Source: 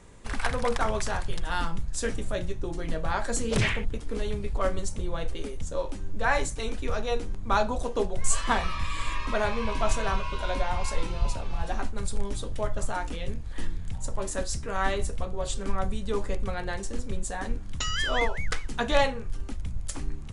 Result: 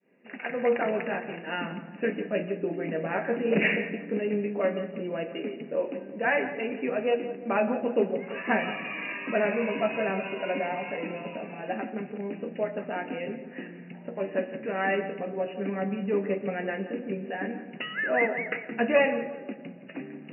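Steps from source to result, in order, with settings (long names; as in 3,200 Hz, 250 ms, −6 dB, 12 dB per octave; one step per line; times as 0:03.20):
fade in at the beginning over 0.83 s
flat-topped bell 1,100 Hz −10 dB 1 octave
notch filter 1,100 Hz, Q 11
reversed playback
upward compression, threshold −36 dBFS
reversed playback
flanger 0.15 Hz, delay 7.7 ms, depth 3 ms, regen +67%
soft clipping −17.5 dBFS, distortion −23 dB
linear-phase brick-wall band-pass 160–2,900 Hz
feedback echo with a low-pass in the loop 171 ms, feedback 50%, low-pass 1,600 Hz, level −11 dB
convolution reverb, pre-delay 87 ms, DRR 15 dB
level +9 dB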